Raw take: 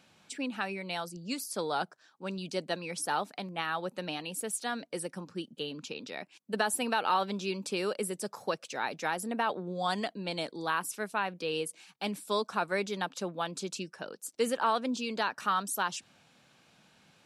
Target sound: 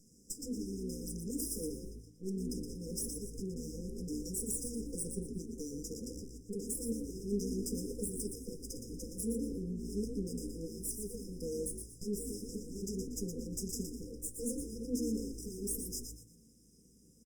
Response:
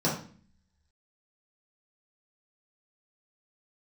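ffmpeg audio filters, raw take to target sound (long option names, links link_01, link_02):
-filter_complex "[0:a]aeval=exprs='(tanh(17.8*val(0)+0.8)-tanh(0.8))/17.8':channel_layout=same,aecho=1:1:1.4:0.74,alimiter=level_in=3dB:limit=-24dB:level=0:latency=1:release=72,volume=-3dB,aeval=exprs='max(val(0),0)':channel_layout=same,asplit=5[link_01][link_02][link_03][link_04][link_05];[link_02]adelay=118,afreqshift=55,volume=-7dB[link_06];[link_03]adelay=236,afreqshift=110,volume=-16.9dB[link_07];[link_04]adelay=354,afreqshift=165,volume=-26.8dB[link_08];[link_05]adelay=472,afreqshift=220,volume=-36.7dB[link_09];[link_01][link_06][link_07][link_08][link_09]amix=inputs=5:normalize=0,asplit=2[link_10][link_11];[1:a]atrim=start_sample=2205,asetrate=74970,aresample=44100,highshelf=frequency=3100:gain=5[link_12];[link_11][link_12]afir=irnorm=-1:irlink=0,volume=-14.5dB[link_13];[link_10][link_13]amix=inputs=2:normalize=0,afftfilt=real='re*(1-between(b*sr/4096,520,5000))':imag='im*(1-between(b*sr/4096,520,5000))':win_size=4096:overlap=0.75,volume=10dB" -ar 48000 -c:a libopus -b:a 48k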